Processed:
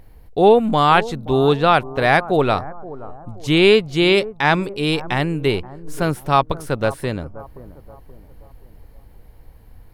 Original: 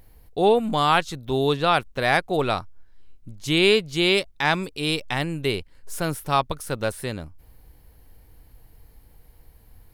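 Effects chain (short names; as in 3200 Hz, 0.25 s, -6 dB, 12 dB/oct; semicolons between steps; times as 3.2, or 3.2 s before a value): high shelf 3600 Hz -10.5 dB; on a send: analogue delay 0.527 s, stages 4096, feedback 42%, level -17 dB; on the sum: gain +6.5 dB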